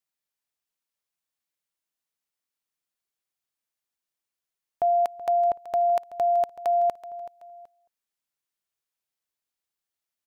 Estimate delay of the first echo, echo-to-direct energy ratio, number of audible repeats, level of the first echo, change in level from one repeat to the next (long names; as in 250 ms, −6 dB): 378 ms, −15.0 dB, 2, −15.5 dB, −9.0 dB